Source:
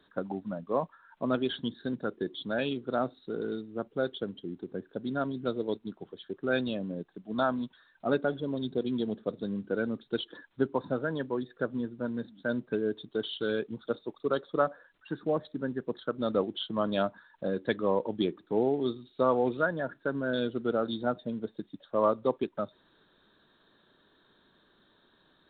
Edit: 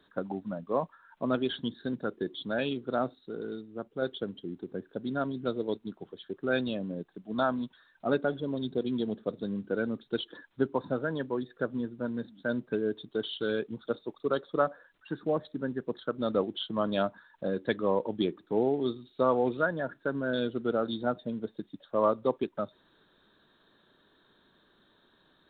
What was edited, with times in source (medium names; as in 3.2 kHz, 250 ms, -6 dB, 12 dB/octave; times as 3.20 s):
3.15–4.02 s: gain -3.5 dB